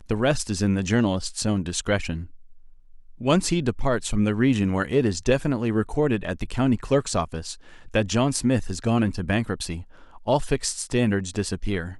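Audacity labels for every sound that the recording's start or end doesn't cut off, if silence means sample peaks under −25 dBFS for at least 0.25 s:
3.240000	7.520000	sound
7.940000	9.750000	sound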